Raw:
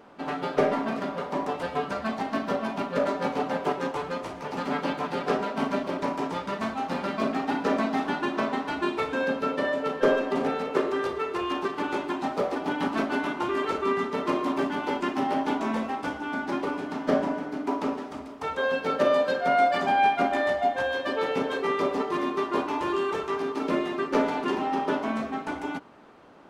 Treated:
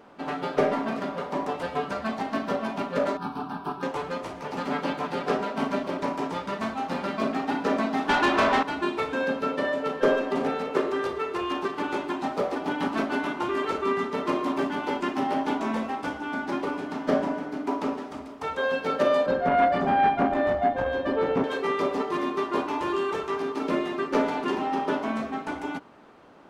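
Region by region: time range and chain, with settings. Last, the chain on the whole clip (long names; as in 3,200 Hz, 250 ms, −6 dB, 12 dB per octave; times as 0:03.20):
0:03.17–0:03.83: parametric band 3,000 Hz −8.5 dB 0.96 octaves + phaser with its sweep stopped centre 2,000 Hz, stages 6
0:08.09–0:08.63: high-shelf EQ 4,000 Hz −3.5 dB + mid-hump overdrive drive 21 dB, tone 5,300 Hz, clips at −13 dBFS
0:19.26–0:21.44: spectral tilt −3.5 dB per octave + saturating transformer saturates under 730 Hz
whole clip: no processing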